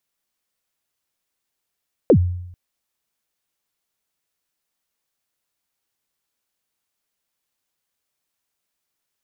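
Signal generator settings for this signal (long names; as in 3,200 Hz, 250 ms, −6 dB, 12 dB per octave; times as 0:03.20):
synth kick length 0.44 s, from 580 Hz, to 89 Hz, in 77 ms, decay 0.81 s, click off, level −6.5 dB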